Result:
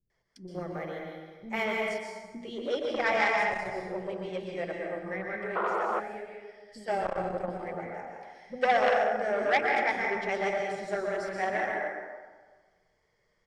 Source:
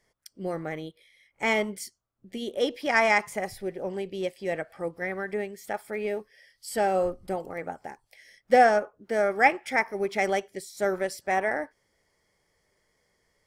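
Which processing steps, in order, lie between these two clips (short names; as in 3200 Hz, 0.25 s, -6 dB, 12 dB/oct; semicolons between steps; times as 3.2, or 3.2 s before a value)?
0.44–1.55 careless resampling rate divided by 3×, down none, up hold; bands offset in time lows, highs 0.1 s, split 310 Hz; flange 1.7 Hz, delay 0.1 ms, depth 5.9 ms, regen +50%; 5.98–6.88 compressor, threshold -42 dBFS, peak gain reduction 11.5 dB; air absorption 96 m; notches 50/100/150/200/250/300 Hz; plate-style reverb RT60 1.4 s, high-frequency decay 0.7×, pre-delay 0.11 s, DRR -1 dB; 5.55–6 painted sound noise 340–1500 Hz -29 dBFS; core saturation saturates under 1600 Hz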